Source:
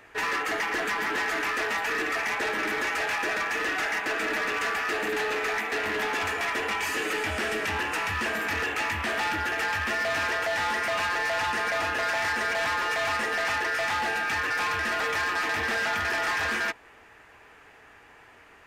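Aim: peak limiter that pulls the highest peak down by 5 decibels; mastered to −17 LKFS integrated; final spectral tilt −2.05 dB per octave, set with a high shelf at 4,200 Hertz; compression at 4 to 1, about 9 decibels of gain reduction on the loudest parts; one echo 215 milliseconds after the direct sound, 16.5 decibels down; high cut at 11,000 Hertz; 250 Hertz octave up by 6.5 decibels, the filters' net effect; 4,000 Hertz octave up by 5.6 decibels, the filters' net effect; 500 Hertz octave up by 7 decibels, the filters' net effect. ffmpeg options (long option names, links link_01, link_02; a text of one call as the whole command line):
ffmpeg -i in.wav -af "lowpass=11000,equalizer=frequency=250:width_type=o:gain=5.5,equalizer=frequency=500:width_type=o:gain=7.5,equalizer=frequency=4000:width_type=o:gain=3.5,highshelf=frequency=4200:gain=7,acompressor=threshold=-32dB:ratio=4,alimiter=level_in=4dB:limit=-24dB:level=0:latency=1,volume=-4dB,aecho=1:1:215:0.15,volume=16dB" out.wav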